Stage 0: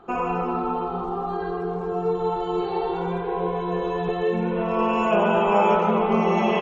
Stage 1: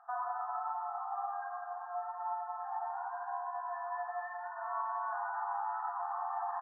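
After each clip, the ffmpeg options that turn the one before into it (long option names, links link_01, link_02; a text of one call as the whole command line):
ffmpeg -i in.wav -af "afftfilt=real='re*between(b*sr/4096,670,1900)':imag='im*between(b*sr/4096,670,1900)':win_size=4096:overlap=0.75,alimiter=limit=-21dB:level=0:latency=1:release=474,volume=-7dB" out.wav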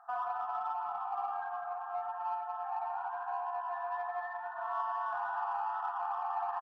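ffmpeg -i in.wav -filter_complex "[0:a]asplit=2[link_01][link_02];[link_02]asoftclip=type=tanh:threshold=-38.5dB,volume=-11dB[link_03];[link_01][link_03]amix=inputs=2:normalize=0,asplit=2[link_04][link_05];[link_05]adelay=699.7,volume=-10dB,highshelf=frequency=4000:gain=-15.7[link_06];[link_04][link_06]amix=inputs=2:normalize=0" out.wav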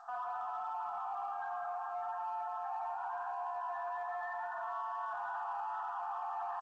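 ffmpeg -i in.wav -af "alimiter=level_in=13.5dB:limit=-24dB:level=0:latency=1:release=26,volume=-13.5dB,volume=4.5dB" -ar 16000 -c:a g722 out.g722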